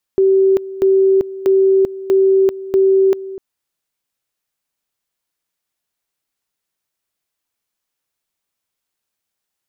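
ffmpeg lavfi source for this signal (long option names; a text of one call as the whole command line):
ffmpeg -f lavfi -i "aevalsrc='pow(10,(-8.5-16.5*gte(mod(t,0.64),0.39))/20)*sin(2*PI*385*t)':duration=3.2:sample_rate=44100" out.wav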